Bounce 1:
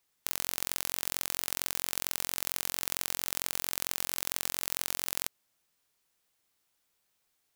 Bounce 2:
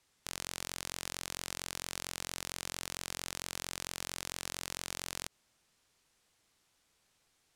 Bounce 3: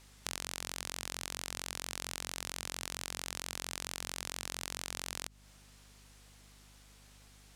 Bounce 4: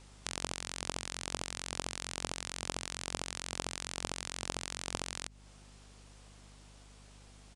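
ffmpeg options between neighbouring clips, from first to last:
-af "lowpass=9k,lowshelf=f=230:g=5.5,alimiter=limit=-19.5dB:level=0:latency=1:release=70,volume=5.5dB"
-af "acompressor=threshold=-45dB:ratio=6,aeval=exprs='val(0)+0.000251*(sin(2*PI*50*n/s)+sin(2*PI*2*50*n/s)/2+sin(2*PI*3*50*n/s)/3+sin(2*PI*4*50*n/s)/4+sin(2*PI*5*50*n/s)/5)':c=same,asoftclip=type=tanh:threshold=-20dB,volume=12dB"
-filter_complex "[0:a]asplit=2[a][b];[b]acrusher=samples=20:mix=1:aa=0.000001,volume=-5dB[c];[a][c]amix=inputs=2:normalize=0,aresample=22050,aresample=44100"

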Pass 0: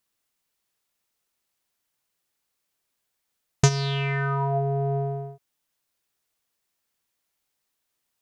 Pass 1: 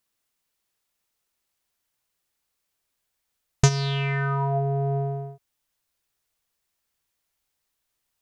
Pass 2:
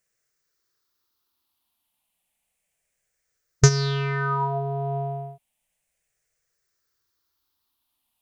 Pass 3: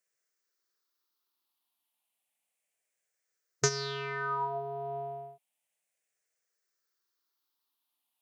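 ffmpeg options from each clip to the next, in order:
-af "asubboost=boost=2:cutoff=120"
-af "afftfilt=real='re*pow(10,11/40*sin(2*PI*(0.53*log(max(b,1)*sr/1024/100)/log(2)-(-0.32)*(pts-256)/sr)))':imag='im*pow(10,11/40*sin(2*PI*(0.53*log(max(b,1)*sr/1024/100)/log(2)-(-0.32)*(pts-256)/sr)))':win_size=1024:overlap=0.75"
-af "highpass=290,volume=-6.5dB"

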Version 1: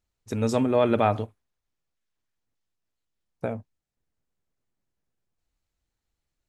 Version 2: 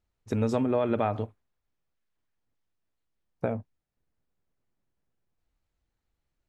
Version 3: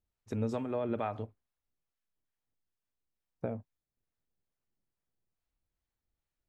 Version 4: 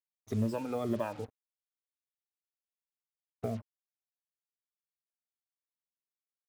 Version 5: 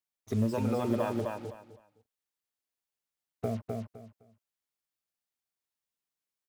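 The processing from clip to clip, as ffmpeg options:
-af "highshelf=f=4.2k:g=-11.5,acompressor=threshold=-24dB:ratio=6,volume=2dB"
-filter_complex "[0:a]acrossover=split=620[a][b];[a]aeval=exprs='val(0)*(1-0.5/2+0.5/2*cos(2*PI*2.3*n/s))':c=same[c];[b]aeval=exprs='val(0)*(1-0.5/2-0.5/2*cos(2*PI*2.3*n/s))':c=same[d];[c][d]amix=inputs=2:normalize=0,volume=-5.5dB"
-af "afftfilt=real='re*pow(10,16/40*sin(2*PI*(1.3*log(max(b,1)*sr/1024/100)/log(2)-(-1.9)*(pts-256)/sr)))':imag='im*pow(10,16/40*sin(2*PI*(1.3*log(max(b,1)*sr/1024/100)/log(2)-(-1.9)*(pts-256)/sr)))':win_size=1024:overlap=0.75,acrusher=bits=7:mix=0:aa=0.5,volume=-2dB"
-af "aecho=1:1:256|512|768:0.668|0.147|0.0323,volume=2.5dB"

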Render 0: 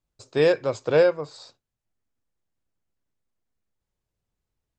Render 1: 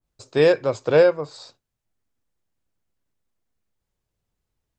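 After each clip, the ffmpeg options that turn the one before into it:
-af "adynamicequalizer=threshold=0.0158:dfrequency=1700:dqfactor=0.7:tfrequency=1700:tqfactor=0.7:attack=5:release=100:ratio=0.375:range=2:mode=cutabove:tftype=highshelf,volume=3dB"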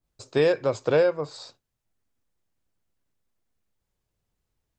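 -af "acompressor=threshold=-19dB:ratio=2.5"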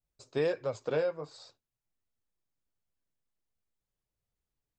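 -af "flanger=delay=1.4:depth=5.8:regen=-43:speed=1.4:shape=sinusoidal,volume=-6dB"

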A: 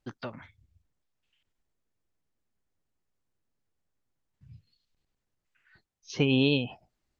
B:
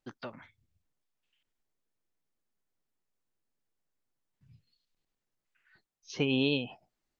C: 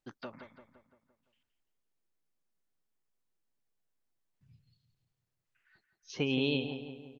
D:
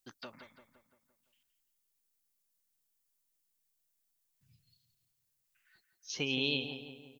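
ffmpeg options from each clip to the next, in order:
-af "equalizer=f=62:t=o:w=1.8:g=-11.5,volume=-3dB"
-filter_complex "[0:a]asplit=2[a][b];[b]adelay=171,lowpass=f=3.1k:p=1,volume=-9dB,asplit=2[c][d];[d]adelay=171,lowpass=f=3.1k:p=1,volume=0.54,asplit=2[e][f];[f]adelay=171,lowpass=f=3.1k:p=1,volume=0.54,asplit=2[g][h];[h]adelay=171,lowpass=f=3.1k:p=1,volume=0.54,asplit=2[i][j];[j]adelay=171,lowpass=f=3.1k:p=1,volume=0.54,asplit=2[k][l];[l]adelay=171,lowpass=f=3.1k:p=1,volume=0.54[m];[a][c][e][g][i][k][m]amix=inputs=7:normalize=0,volume=-2.5dB"
-af "crystalizer=i=5.5:c=0,volume=-6dB"

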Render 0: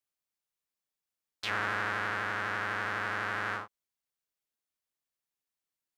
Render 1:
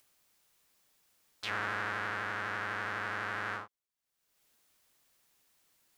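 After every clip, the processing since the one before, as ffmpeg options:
-af "acompressor=mode=upward:threshold=-49dB:ratio=2.5,volume=-3dB"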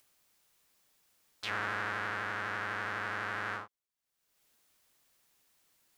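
-af anull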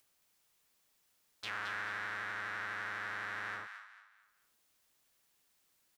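-filter_complex "[0:a]acrossover=split=910[a][b];[a]alimiter=level_in=15dB:limit=-24dB:level=0:latency=1,volume=-15dB[c];[b]aecho=1:1:221|442|663|884:0.447|0.156|0.0547|0.0192[d];[c][d]amix=inputs=2:normalize=0,volume=-4dB"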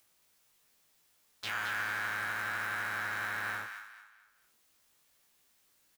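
-filter_complex "[0:a]acrusher=bits=3:mode=log:mix=0:aa=0.000001,asplit=2[a][b];[b]adelay=18,volume=-3dB[c];[a][c]amix=inputs=2:normalize=0,volume=2.5dB"

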